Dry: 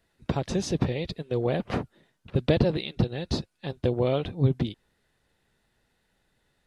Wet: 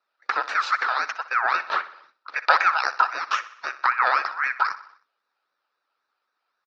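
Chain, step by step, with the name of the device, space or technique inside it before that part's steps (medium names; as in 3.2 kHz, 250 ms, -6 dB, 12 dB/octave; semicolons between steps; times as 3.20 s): frequency weighting D; gate -59 dBFS, range -12 dB; voice changer toy (ring modulator with a swept carrier 1.6 kHz, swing 30%, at 3.8 Hz; cabinet simulation 530–4100 Hz, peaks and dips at 650 Hz -4 dB, 1.3 kHz +10 dB, 2.1 kHz -7 dB, 3.2 kHz -9 dB); peaking EQ 700 Hz +3.5 dB 1.7 oct; feedback delay 62 ms, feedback 55%, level -16 dB; trim +4 dB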